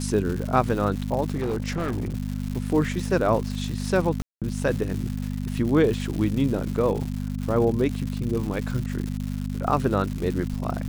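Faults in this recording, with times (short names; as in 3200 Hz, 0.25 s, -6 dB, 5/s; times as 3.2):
crackle 250/s -30 dBFS
hum 50 Hz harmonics 5 -29 dBFS
1.34–2.16 clipped -22.5 dBFS
4.22–4.42 gap 0.197 s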